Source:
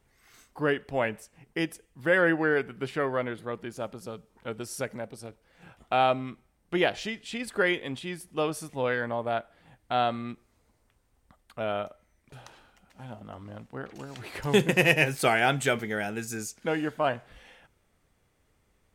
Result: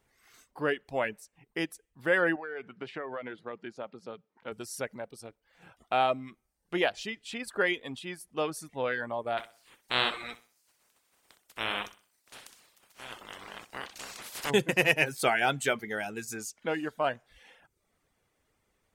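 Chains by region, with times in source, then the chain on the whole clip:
0:02.36–0:04.52: band-pass filter 140–3,800 Hz + downward compressor 10 to 1, threshold −29 dBFS
0:09.37–0:14.49: ceiling on every frequency bin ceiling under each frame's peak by 30 dB + repeating echo 63 ms, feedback 37%, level −7 dB
whole clip: low-shelf EQ 190 Hz −8 dB; reverb reduction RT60 0.53 s; level −1.5 dB

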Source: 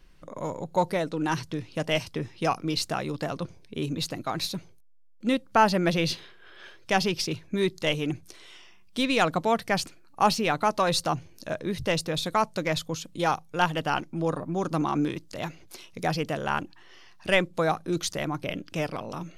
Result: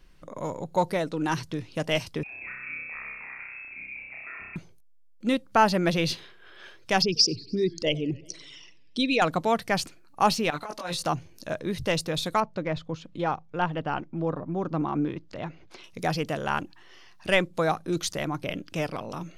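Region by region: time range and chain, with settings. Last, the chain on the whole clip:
0:02.23–0:04.56: downward compressor 10 to 1, threshold −40 dBFS + voice inversion scrambler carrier 2,600 Hz + flutter between parallel walls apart 5.4 metres, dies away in 1.3 s
0:07.02–0:09.22: spectral envelope exaggerated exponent 2 + flat-topped bell 6,200 Hz +10.5 dB 1.2 octaves + feedback echo with a swinging delay time 95 ms, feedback 63%, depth 198 cents, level −23 dB
0:10.50–0:11.03: low-shelf EQ 340 Hz −8.5 dB + compressor whose output falls as the input rises −28 dBFS, ratio −0.5 + micro pitch shift up and down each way 10 cents
0:12.40–0:15.84: head-to-tape spacing loss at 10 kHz 30 dB + one half of a high-frequency compander encoder only
whole clip: no processing

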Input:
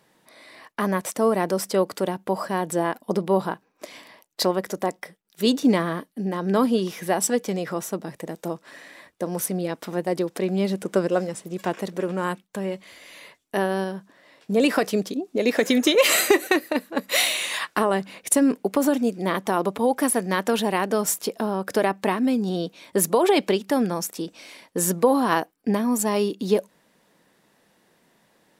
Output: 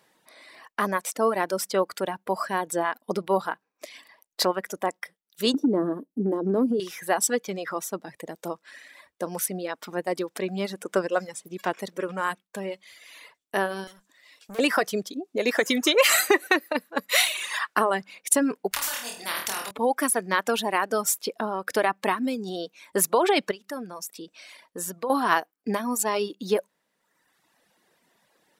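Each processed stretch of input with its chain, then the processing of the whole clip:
0:05.54–0:06.80: drawn EQ curve 120 Hz 0 dB, 310 Hz +14 dB, 2,100 Hz −22 dB, 11,000 Hz −10 dB + downward compressor, threshold −13 dBFS
0:13.87–0:14.59: high-shelf EQ 2,200 Hz +10.5 dB + tube saturation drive 33 dB, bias 0.5
0:18.71–0:19.71: comb filter 1.1 ms, depth 41% + flutter between parallel walls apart 4.3 metres, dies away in 0.54 s + every bin compressed towards the loudest bin 4 to 1
0:23.51–0:25.10: notch filter 820 Hz, Q 14 + downward compressor 1.5 to 1, threshold −41 dBFS
whole clip: low-shelf EQ 320 Hz −8.5 dB; reverb reduction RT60 1.2 s; dynamic equaliser 1,400 Hz, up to +4 dB, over −42 dBFS, Q 1.3

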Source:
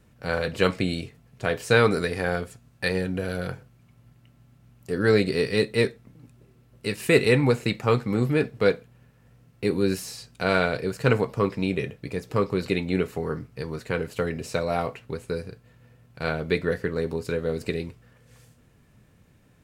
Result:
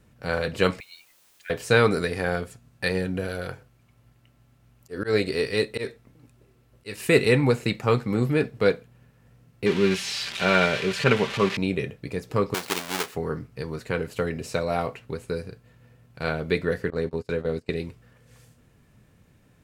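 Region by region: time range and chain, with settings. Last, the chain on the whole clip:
0:00.80–0:01.50: expanding power law on the bin magnitudes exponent 1.8 + Butterworth high-pass 1,700 Hz 72 dB per octave + bit-depth reduction 10 bits, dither triangular
0:03.27–0:07.09: parametric band 170 Hz −7 dB 1.2 octaves + volume swells 120 ms
0:09.66–0:11.57: spike at every zero crossing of −13 dBFS + low-pass with resonance 2,800 Hz, resonance Q 1.5 + comb filter 5.1 ms, depth 44%
0:12.54–0:13.15: each half-wave held at its own peak + high-pass filter 1,300 Hz 6 dB per octave
0:16.90–0:17.77: noise gate −32 dBFS, range −21 dB + high-shelf EQ 10,000 Hz −9 dB
whole clip: no processing

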